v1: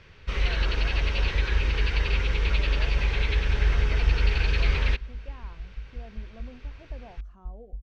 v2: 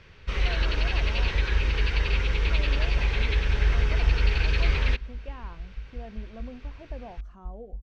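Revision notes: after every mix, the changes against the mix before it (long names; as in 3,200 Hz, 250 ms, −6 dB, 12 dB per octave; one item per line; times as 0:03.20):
speech +5.0 dB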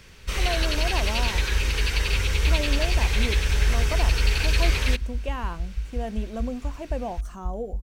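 speech +10.5 dB
second sound: add parametric band 81 Hz +14 dB 1.5 octaves
master: remove high-frequency loss of the air 230 metres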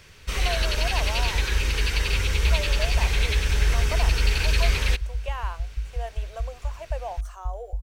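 speech: add inverse Chebyshev high-pass filter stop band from 210 Hz, stop band 50 dB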